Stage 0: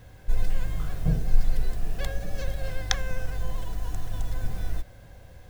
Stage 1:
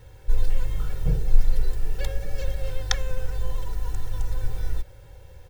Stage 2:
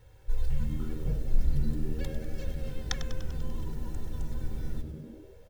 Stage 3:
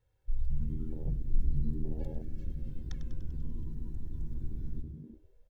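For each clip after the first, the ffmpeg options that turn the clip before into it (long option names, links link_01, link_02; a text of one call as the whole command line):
ffmpeg -i in.wav -af "aecho=1:1:2.2:0.86,volume=-2dB" out.wav
ffmpeg -i in.wav -filter_complex "[0:a]asplit=9[link_01][link_02][link_03][link_04][link_05][link_06][link_07][link_08][link_09];[link_02]adelay=98,afreqshift=-80,volume=-11.5dB[link_10];[link_03]adelay=196,afreqshift=-160,volume=-15.4dB[link_11];[link_04]adelay=294,afreqshift=-240,volume=-19.3dB[link_12];[link_05]adelay=392,afreqshift=-320,volume=-23.1dB[link_13];[link_06]adelay=490,afreqshift=-400,volume=-27dB[link_14];[link_07]adelay=588,afreqshift=-480,volume=-30.9dB[link_15];[link_08]adelay=686,afreqshift=-560,volume=-34.8dB[link_16];[link_09]adelay=784,afreqshift=-640,volume=-38.6dB[link_17];[link_01][link_10][link_11][link_12][link_13][link_14][link_15][link_16][link_17]amix=inputs=9:normalize=0,volume=-8.5dB" out.wav
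ffmpeg -i in.wav -af "afwtdn=0.0224,volume=-3dB" out.wav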